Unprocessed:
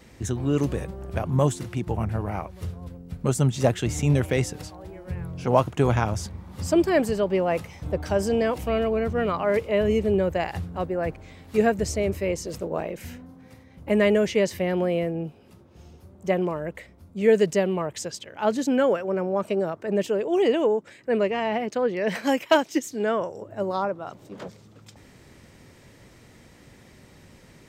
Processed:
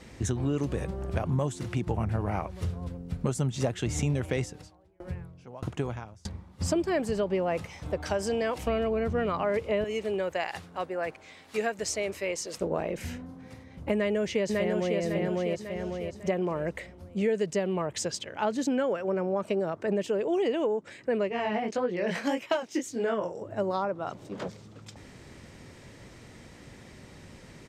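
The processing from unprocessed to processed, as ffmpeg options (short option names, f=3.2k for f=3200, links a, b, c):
-filter_complex "[0:a]asplit=3[a][b][c];[a]afade=t=out:st=4.44:d=0.02[d];[b]aeval=exprs='val(0)*pow(10,-31*if(lt(mod(1.6*n/s,1),2*abs(1.6)/1000),1-mod(1.6*n/s,1)/(2*abs(1.6)/1000),(mod(1.6*n/s,1)-2*abs(1.6)/1000)/(1-2*abs(1.6)/1000))/20)':c=same,afade=t=in:st=4.44:d=0.02,afade=t=out:st=6.6:d=0.02[e];[c]afade=t=in:st=6.6:d=0.02[f];[d][e][f]amix=inputs=3:normalize=0,asettb=1/sr,asplit=3[g][h][i];[g]atrim=end=7.664[j];[h]atrim=start=7.66:end=8.67,asetpts=PTS-STARTPTS,afade=t=in:d=0.004:c=qsin,afade=t=out:st=1.006:d=0.004:c=qsin,lowshelf=f=450:g=-8[k];[i]atrim=start=8.666[l];[j][k]acrossfade=d=0.004:c1=hsin:c2=qsin[m];[m][l]acrossfade=d=0.004:c1=qsin:c2=hsin,asettb=1/sr,asplit=3[n][o][p];[n]atrim=end=9.844[q];[o]atrim=start=9.84:end=12.61,asetpts=PTS-STARTPTS,afade=t=in:d=0.004:c=qsin,afade=t=out:st=2.766:d=0.004:c=qsin,highpass=f=1k:p=1[r];[p]atrim=start=12.606[s];[q][r]acrossfade=d=0.004:c1=hsin:c2=qsin[t];[t][s]acrossfade=d=0.004:c1=qsin:c2=hsin,asplit=2[u][v];[v]afade=t=in:st=13.94:d=0.01,afade=t=out:st=15:d=0.01,aecho=0:1:550|1100|1650|2200:0.630957|0.220835|0.0772923|0.0270523[w];[u][w]amix=inputs=2:normalize=0,asettb=1/sr,asplit=3[x][y][z];[x]atrim=end=21.294[aa];[y]atrim=start=21.29:end=23.44,asetpts=PTS-STARTPTS,afade=t=in:d=0.004:c=qsin,afade=t=out:st=2.146:d=0.004:c=qsin,flanger=delay=16:depth=7.5:speed=1.7[ab];[z]atrim=start=23.436[ac];[aa][ab]acrossfade=d=0.004:c1=hsin:c2=qsin[ad];[ad][ac]acrossfade=d=0.004:c1=qsin:c2=hsin,lowpass=9.9k,acompressor=threshold=-27dB:ratio=5,volume=2dB"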